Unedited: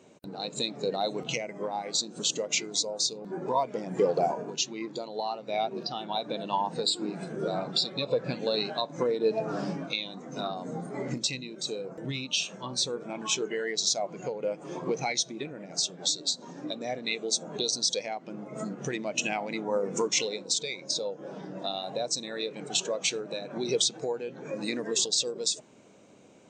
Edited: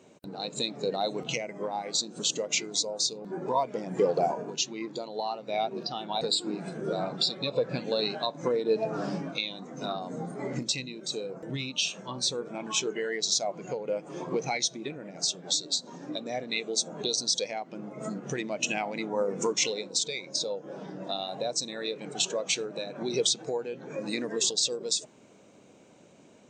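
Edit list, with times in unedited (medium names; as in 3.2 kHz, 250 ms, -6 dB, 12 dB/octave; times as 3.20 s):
6.21–6.76 s: delete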